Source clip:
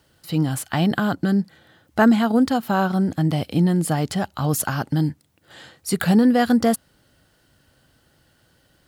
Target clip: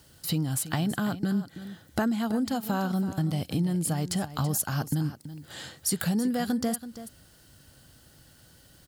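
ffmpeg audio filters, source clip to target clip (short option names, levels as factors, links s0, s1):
-filter_complex "[0:a]bass=f=250:g=5,treble=f=4000:g=9,acompressor=threshold=0.0501:ratio=5,asplit=2[s0][s1];[s1]aecho=0:1:330:0.211[s2];[s0][s2]amix=inputs=2:normalize=0"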